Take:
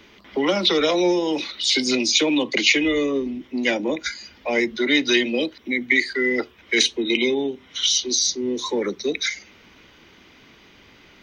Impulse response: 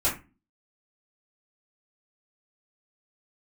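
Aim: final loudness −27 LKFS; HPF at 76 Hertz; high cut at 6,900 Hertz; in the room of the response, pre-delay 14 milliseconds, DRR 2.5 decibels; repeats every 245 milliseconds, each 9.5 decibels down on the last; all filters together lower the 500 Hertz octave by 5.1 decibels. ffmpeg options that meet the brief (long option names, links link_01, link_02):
-filter_complex "[0:a]highpass=76,lowpass=6900,equalizer=frequency=500:width_type=o:gain=-7,aecho=1:1:245|490|735|980:0.335|0.111|0.0365|0.012,asplit=2[link_01][link_02];[1:a]atrim=start_sample=2205,adelay=14[link_03];[link_02][link_03]afir=irnorm=-1:irlink=0,volume=-13.5dB[link_04];[link_01][link_04]amix=inputs=2:normalize=0,volume=-7dB"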